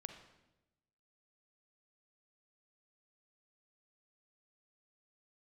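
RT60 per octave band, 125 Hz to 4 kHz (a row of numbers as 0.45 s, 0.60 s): 1.3 s, 1.2 s, 1.1 s, 0.85 s, 0.85 s, 0.80 s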